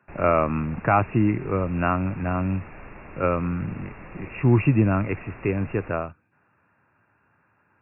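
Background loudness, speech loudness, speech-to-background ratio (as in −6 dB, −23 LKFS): −43.5 LKFS, −24.0 LKFS, 19.5 dB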